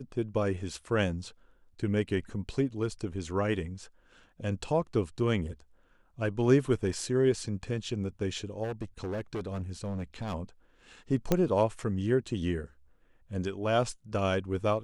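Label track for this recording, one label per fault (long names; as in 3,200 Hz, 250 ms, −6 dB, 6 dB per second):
8.630000	10.340000	clipping −30.5 dBFS
11.320000	11.320000	click −11 dBFS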